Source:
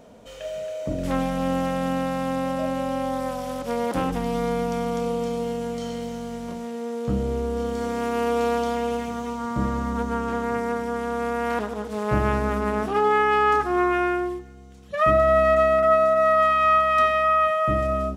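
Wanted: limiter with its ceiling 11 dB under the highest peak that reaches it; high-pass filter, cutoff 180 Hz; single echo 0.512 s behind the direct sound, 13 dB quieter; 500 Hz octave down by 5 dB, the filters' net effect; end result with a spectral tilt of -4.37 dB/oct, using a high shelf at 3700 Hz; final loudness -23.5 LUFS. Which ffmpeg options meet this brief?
-af "highpass=180,equalizer=f=500:t=o:g=-6.5,highshelf=f=3.7k:g=-3.5,alimiter=limit=-21dB:level=0:latency=1,aecho=1:1:512:0.224,volume=7dB"

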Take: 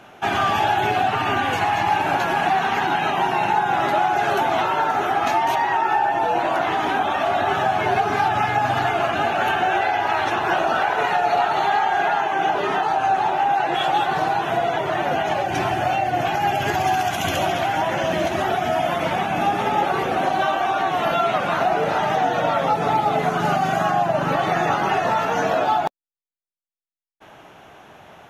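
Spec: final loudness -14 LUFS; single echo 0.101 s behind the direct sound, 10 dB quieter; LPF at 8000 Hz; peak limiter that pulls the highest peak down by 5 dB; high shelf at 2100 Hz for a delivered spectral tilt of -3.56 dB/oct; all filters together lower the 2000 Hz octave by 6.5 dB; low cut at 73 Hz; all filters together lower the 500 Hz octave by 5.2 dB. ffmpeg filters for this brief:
-af "highpass=73,lowpass=8k,equalizer=f=500:t=o:g=-7,equalizer=f=2k:t=o:g=-6,highshelf=f=2.1k:g=-4.5,alimiter=limit=-16.5dB:level=0:latency=1,aecho=1:1:101:0.316,volume=11dB"

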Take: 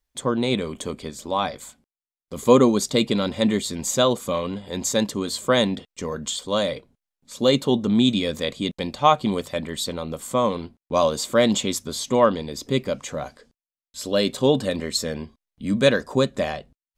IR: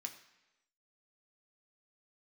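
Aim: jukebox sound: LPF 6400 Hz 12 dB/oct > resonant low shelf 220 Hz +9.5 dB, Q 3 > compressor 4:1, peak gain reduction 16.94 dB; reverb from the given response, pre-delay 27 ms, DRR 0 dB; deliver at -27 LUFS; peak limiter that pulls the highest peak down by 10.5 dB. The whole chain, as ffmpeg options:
-filter_complex "[0:a]alimiter=limit=-12.5dB:level=0:latency=1,asplit=2[a][b];[1:a]atrim=start_sample=2205,adelay=27[c];[b][c]afir=irnorm=-1:irlink=0,volume=3dB[d];[a][d]amix=inputs=2:normalize=0,lowpass=6.4k,lowshelf=f=220:t=q:w=3:g=9.5,acompressor=threshold=-28dB:ratio=4,volume=3.5dB"

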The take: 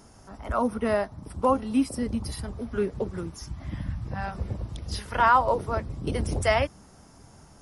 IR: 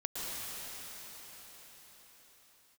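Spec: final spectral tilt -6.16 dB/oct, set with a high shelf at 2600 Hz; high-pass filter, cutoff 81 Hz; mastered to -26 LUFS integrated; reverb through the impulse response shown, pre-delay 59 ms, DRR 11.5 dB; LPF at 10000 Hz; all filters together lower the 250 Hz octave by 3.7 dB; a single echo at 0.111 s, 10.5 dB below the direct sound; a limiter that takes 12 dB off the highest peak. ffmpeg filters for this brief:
-filter_complex "[0:a]highpass=81,lowpass=10k,equalizer=f=250:t=o:g=-4,highshelf=f=2.6k:g=-9,alimiter=limit=-21.5dB:level=0:latency=1,aecho=1:1:111:0.299,asplit=2[a][b];[1:a]atrim=start_sample=2205,adelay=59[c];[b][c]afir=irnorm=-1:irlink=0,volume=-16dB[d];[a][d]amix=inputs=2:normalize=0,volume=7.5dB"

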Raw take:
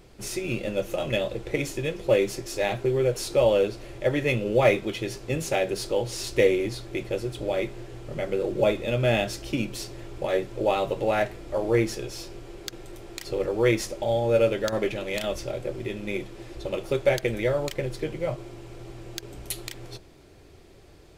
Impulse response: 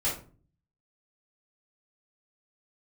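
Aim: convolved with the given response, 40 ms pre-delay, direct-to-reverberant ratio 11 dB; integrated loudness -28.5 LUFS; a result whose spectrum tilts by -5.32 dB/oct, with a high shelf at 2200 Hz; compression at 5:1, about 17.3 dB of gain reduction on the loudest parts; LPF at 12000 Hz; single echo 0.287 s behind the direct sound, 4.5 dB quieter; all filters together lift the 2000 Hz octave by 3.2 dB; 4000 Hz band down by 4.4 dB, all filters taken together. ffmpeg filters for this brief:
-filter_complex "[0:a]lowpass=12k,equalizer=f=2k:t=o:g=8,highshelf=f=2.2k:g=-5.5,equalizer=f=4k:t=o:g=-3.5,acompressor=threshold=-36dB:ratio=5,aecho=1:1:287:0.596,asplit=2[a][b];[1:a]atrim=start_sample=2205,adelay=40[c];[b][c]afir=irnorm=-1:irlink=0,volume=-19dB[d];[a][d]amix=inputs=2:normalize=0,volume=9.5dB"

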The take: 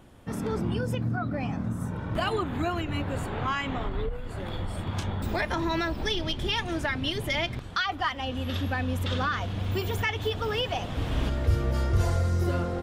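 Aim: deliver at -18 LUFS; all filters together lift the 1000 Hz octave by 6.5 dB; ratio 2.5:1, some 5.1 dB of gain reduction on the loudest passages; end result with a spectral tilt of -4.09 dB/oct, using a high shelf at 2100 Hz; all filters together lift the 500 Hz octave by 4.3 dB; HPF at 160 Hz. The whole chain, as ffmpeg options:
-af "highpass=160,equalizer=f=500:t=o:g=3.5,equalizer=f=1k:t=o:g=5.5,highshelf=f=2.1k:g=7.5,acompressor=threshold=-26dB:ratio=2.5,volume=11.5dB"

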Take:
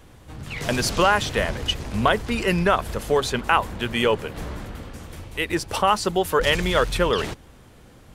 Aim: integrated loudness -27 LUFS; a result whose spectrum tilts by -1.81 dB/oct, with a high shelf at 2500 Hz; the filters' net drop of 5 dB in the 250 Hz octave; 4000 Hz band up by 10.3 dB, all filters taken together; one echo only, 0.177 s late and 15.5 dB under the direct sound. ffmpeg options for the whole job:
-af "equalizer=f=250:t=o:g=-8,highshelf=f=2.5k:g=6,equalizer=f=4k:t=o:g=9,aecho=1:1:177:0.168,volume=-8.5dB"

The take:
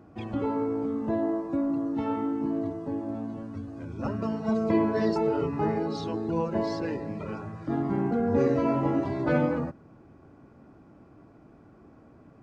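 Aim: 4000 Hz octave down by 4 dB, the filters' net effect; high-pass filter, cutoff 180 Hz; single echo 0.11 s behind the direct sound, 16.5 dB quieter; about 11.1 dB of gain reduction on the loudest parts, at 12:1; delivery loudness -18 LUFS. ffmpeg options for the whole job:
-af "highpass=180,equalizer=f=4k:t=o:g=-5,acompressor=threshold=-31dB:ratio=12,aecho=1:1:110:0.15,volume=18.5dB"

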